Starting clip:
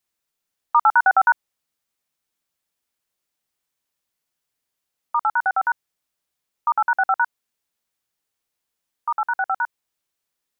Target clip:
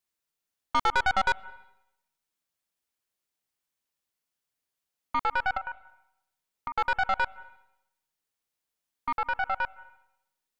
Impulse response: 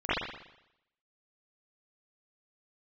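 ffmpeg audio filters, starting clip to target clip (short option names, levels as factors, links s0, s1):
-filter_complex "[0:a]asettb=1/sr,asplit=3[s0][s1][s2];[s0]atrim=end=5.574[s3];[s1]atrim=start=5.57:end=6.77,asetpts=PTS-STARTPTS,afade=t=in:d=0.004:c=qsin,afade=t=out:st=1.196:d=0.004:c=qsin,acompressor=threshold=0.0447:ratio=16[s4];[s2]atrim=start=6.766[s5];[s3][s4]acrossfade=d=0.004:c1=hsin:c2=qsin[s6];[s6][s5]acrossfade=d=0.004:c1=qsin:c2=hsin,aeval=exprs='(tanh(7.08*val(0)+0.6)-tanh(0.6))/7.08':c=same,asplit=2[s7][s8];[1:a]atrim=start_sample=2205,adelay=120[s9];[s8][s9]afir=irnorm=-1:irlink=0,volume=0.0168[s10];[s7][s10]amix=inputs=2:normalize=0,volume=0.75"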